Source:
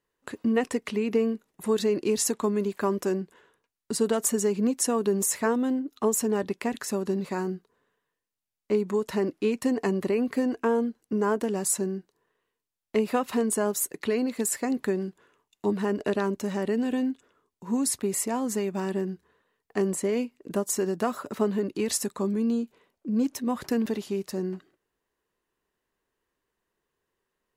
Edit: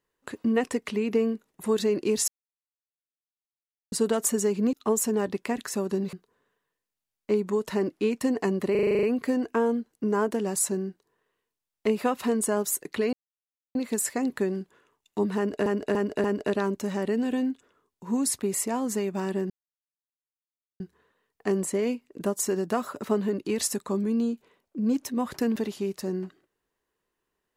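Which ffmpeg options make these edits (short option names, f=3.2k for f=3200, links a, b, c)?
-filter_complex "[0:a]asplit=18[a][b][c][d][e][f][g][h][i][j][k][l][m][n][o][p][q][r];[a]atrim=end=2.28,asetpts=PTS-STARTPTS,afade=t=out:st=2.276:d=0.004:c=hsin[s];[b]atrim=start=2.28:end=3.92,asetpts=PTS-STARTPTS,volume=0[t];[c]atrim=start=3.92:end=4.732,asetpts=PTS-STARTPTS,afade=t=in:d=0.004:c=hsin[u];[d]atrim=start=5.888:end=7.292[v];[e]atrim=start=7.538:end=10.162[w];[f]atrim=start=10.118:end=10.162[x];[g]atrim=start=10.118:end=10.162[y];[h]atrim=start=10.118:end=10.162[z];[i]atrim=start=10.118:end=10.162[aa];[j]atrim=start=10.118:end=10.162[ab];[k]atrim=start=10.118:end=10.162[ac];[l]atrim=start=10.118:end=10.162[ad];[m]atrim=start=10.118:end=14.22,asetpts=PTS-STARTPTS,afade=t=out:st=4.098:d=0.004:c=hsin,apad=pad_dur=0.62[ae];[n]atrim=start=14.22:end=16.132,asetpts=PTS-STARTPTS,afade=t=in:d=0.004:c=hsin[af];[o]atrim=start=15.838:end=16.132[ag];[p]atrim=start=15.838:end=16.132[ah];[q]atrim=start=15.838:end=19.1,asetpts=PTS-STARTPTS,afade=t=out:st=3.258:d=0.004:c=hsin,apad=pad_dur=1.3[ai];[r]atrim=start=19.1,asetpts=PTS-STARTPTS,afade=t=in:d=0.004:c=hsin[aj];[s][t][u]concat=n=3:v=0:a=1[ak];[ak][v]acrossfade=d=0.004:c1=hsin:c2=hsin[al];[al][w]acrossfade=d=0.004:c1=hsin:c2=hsin[am];[am][x]acrossfade=d=0.004:c1=hsin:c2=hsin[an];[an][y]acrossfade=d=0.004:c1=hsin:c2=hsin[ao];[ao][z]acrossfade=d=0.004:c1=hsin:c2=hsin[ap];[ap][aa]acrossfade=d=0.004:c1=hsin:c2=hsin[aq];[aq][ab]acrossfade=d=0.004:c1=hsin:c2=hsin[ar];[ar][ac]acrossfade=d=0.004:c1=hsin:c2=hsin[as];[as][ad]acrossfade=d=0.004:c1=hsin:c2=hsin[at];[ae][af]concat=n=2:v=0:a=1[au];[at][au]acrossfade=d=0.004:c1=hsin:c2=hsin[av];[av][ag]acrossfade=d=0.004:c1=hsin:c2=hsin[aw];[aw][ah]acrossfade=d=0.004:c1=hsin:c2=hsin[ax];[ai][aj]concat=n=2:v=0:a=1[ay];[ax][ay]acrossfade=d=0.004:c1=hsin:c2=hsin"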